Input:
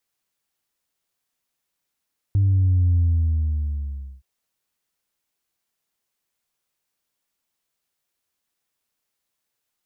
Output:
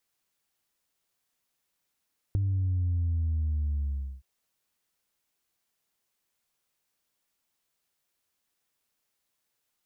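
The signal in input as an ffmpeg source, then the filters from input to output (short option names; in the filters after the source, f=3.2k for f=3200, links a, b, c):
-f lavfi -i "aevalsrc='0.178*clip((1.87-t)/1.26,0,1)*tanh(1*sin(2*PI*100*1.87/log(65/100)*(exp(log(65/100)*t/1.87)-1)))/tanh(1)':d=1.87:s=44100"
-af "acompressor=threshold=-27dB:ratio=6"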